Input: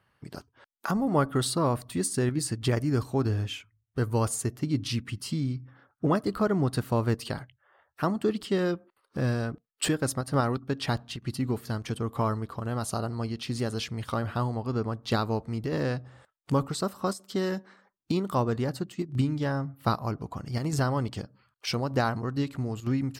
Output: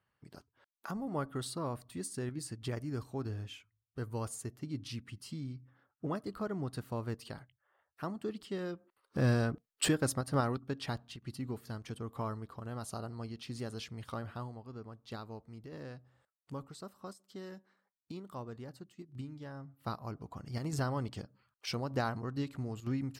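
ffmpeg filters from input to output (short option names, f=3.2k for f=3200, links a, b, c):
-af "volume=9.5dB,afade=t=in:st=8.75:d=0.58:silence=0.266073,afade=t=out:st=9.33:d=1.68:silence=0.316228,afade=t=out:st=14.16:d=0.48:silence=0.446684,afade=t=in:st=19.51:d=1.12:silence=0.316228"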